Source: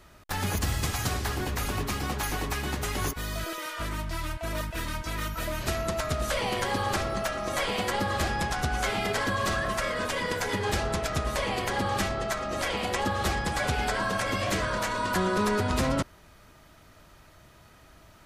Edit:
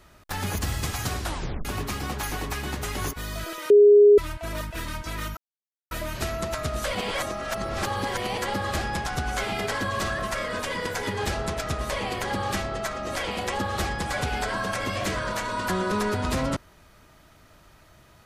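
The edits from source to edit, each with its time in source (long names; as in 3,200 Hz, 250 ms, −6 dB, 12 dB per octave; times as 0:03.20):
0:01.20: tape stop 0.45 s
0:03.70–0:04.18: beep over 412 Hz −10 dBFS
0:05.37: splice in silence 0.54 s
0:06.41–0:07.84: reverse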